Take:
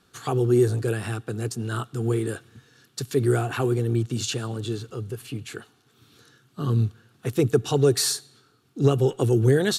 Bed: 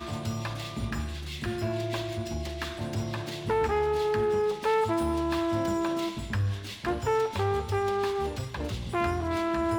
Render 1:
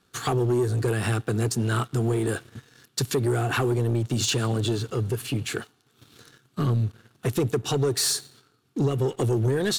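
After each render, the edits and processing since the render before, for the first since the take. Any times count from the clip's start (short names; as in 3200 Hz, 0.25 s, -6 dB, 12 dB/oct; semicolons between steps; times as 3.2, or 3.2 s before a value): compressor 6:1, threshold -26 dBFS, peak gain reduction 12.5 dB; sample leveller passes 2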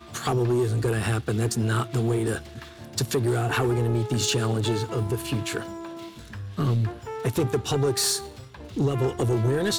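add bed -8.5 dB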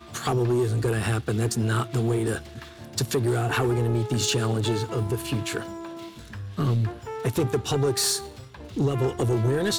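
nothing audible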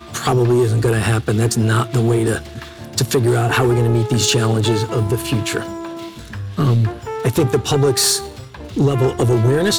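gain +8.5 dB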